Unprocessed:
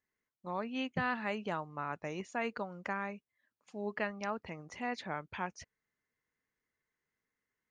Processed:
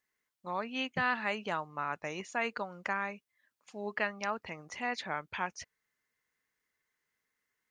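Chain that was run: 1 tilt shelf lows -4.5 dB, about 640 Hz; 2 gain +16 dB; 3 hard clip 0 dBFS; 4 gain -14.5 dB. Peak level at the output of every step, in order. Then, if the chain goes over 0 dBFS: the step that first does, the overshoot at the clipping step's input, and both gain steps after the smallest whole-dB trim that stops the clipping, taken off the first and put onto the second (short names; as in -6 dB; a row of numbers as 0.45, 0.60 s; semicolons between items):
-19.5, -3.5, -3.5, -18.0 dBFS; no overload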